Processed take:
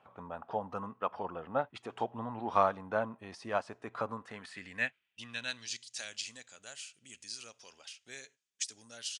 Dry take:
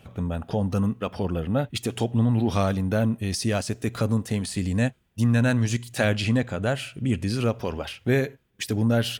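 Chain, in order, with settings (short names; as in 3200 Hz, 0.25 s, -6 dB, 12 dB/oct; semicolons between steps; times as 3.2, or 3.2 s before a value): band-pass sweep 1000 Hz -> 6500 Hz, 4.03–6.1; downsampling 22050 Hz; upward expander 1.5:1, over -41 dBFS; gain +6 dB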